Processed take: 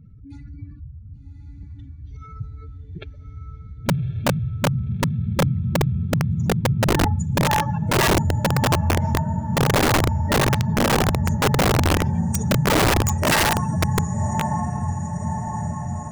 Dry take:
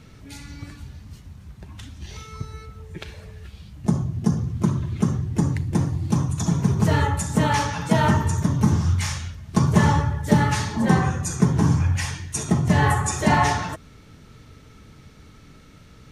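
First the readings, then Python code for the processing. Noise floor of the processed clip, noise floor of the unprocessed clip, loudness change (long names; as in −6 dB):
−40 dBFS, −48 dBFS, +0.5 dB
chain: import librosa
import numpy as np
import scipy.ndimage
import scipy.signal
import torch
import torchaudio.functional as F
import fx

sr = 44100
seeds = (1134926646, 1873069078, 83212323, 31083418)

y = fx.spec_expand(x, sr, power=2.5)
y = fx.echo_diffused(y, sr, ms=1136, feedback_pct=65, wet_db=-6.0)
y = (np.mod(10.0 ** (13.5 / 20.0) * y + 1.0, 2.0) - 1.0) / 10.0 ** (13.5 / 20.0)
y = y * 10.0 ** (1.0 / 20.0)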